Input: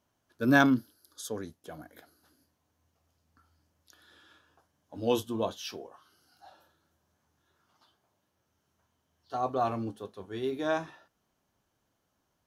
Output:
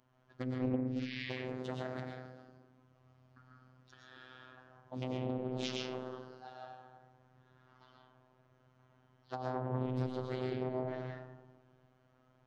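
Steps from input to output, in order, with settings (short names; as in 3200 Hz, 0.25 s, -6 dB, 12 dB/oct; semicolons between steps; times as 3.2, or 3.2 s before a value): rattling part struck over -36 dBFS, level -28 dBFS; painted sound noise, 0.86–1.29, 1800–5200 Hz -33 dBFS; treble ducked by the level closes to 320 Hz, closed at -26 dBFS; LPF 8500 Hz; low-pass opened by the level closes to 2200 Hz, open at -34 dBFS; compressor 16:1, threshold -41 dBFS, peak gain reduction 20 dB; bell 130 Hz +6 dB 1.2 oct; reverb RT60 1.3 s, pre-delay 76 ms, DRR -2.5 dB; robotiser 128 Hz; high shelf 4300 Hz +8.5 dB; Doppler distortion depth 0.82 ms; gain +4.5 dB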